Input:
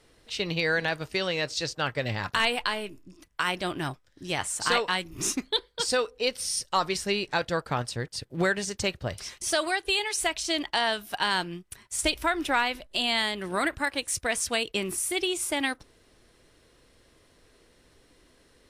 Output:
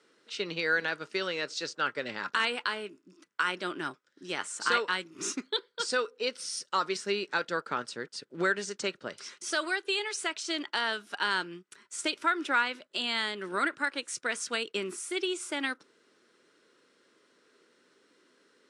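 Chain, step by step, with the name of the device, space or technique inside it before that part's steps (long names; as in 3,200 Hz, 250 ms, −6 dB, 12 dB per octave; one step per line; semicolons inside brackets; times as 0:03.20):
television speaker (loudspeaker in its box 200–8,500 Hz, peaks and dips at 400 Hz +4 dB, 720 Hz −7 dB, 1,400 Hz +9 dB)
level −5 dB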